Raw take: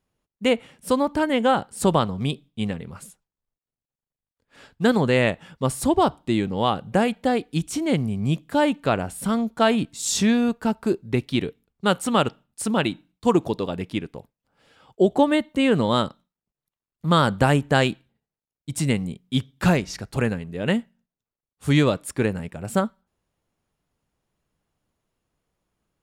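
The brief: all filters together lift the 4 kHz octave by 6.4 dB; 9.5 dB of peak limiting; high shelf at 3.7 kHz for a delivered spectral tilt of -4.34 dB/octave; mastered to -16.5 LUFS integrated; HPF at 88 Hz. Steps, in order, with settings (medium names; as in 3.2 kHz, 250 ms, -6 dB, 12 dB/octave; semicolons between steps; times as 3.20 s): high-pass 88 Hz; treble shelf 3.7 kHz +4 dB; peaking EQ 4 kHz +6 dB; trim +8 dB; peak limiter -3.5 dBFS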